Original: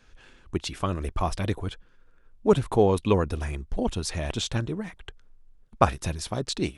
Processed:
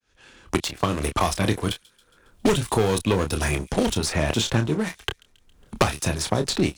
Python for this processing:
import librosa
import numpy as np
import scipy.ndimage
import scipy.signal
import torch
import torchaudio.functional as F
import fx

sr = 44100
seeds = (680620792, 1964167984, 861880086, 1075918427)

p1 = fx.fade_in_head(x, sr, length_s=1.67)
p2 = fx.highpass(p1, sr, hz=87.0, slope=6)
p3 = fx.high_shelf(p2, sr, hz=4400.0, db=6.5)
p4 = fx.leveller(p3, sr, passes=3)
p5 = p4 + fx.echo_wet_highpass(p4, sr, ms=137, feedback_pct=36, hz=4300.0, wet_db=-22.0, dry=0)
p6 = fx.cheby_harmonics(p5, sr, harmonics=(4, 6), levels_db=(-17, -27), full_scale_db=-0.5)
p7 = fx.doubler(p6, sr, ms=27.0, db=-8.0)
p8 = fx.band_squash(p7, sr, depth_pct=100)
y = p8 * 10.0 ** (-6.0 / 20.0)